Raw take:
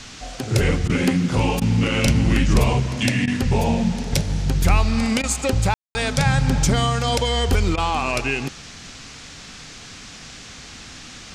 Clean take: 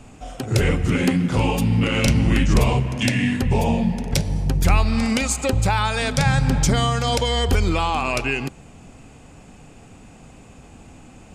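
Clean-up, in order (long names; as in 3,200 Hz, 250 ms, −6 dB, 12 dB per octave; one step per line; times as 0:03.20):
ambience match 0:05.74–0:05.95
repair the gap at 0:00.88/0:01.60/0:03.26/0:05.22/0:07.76, 14 ms
noise reduction from a noise print 6 dB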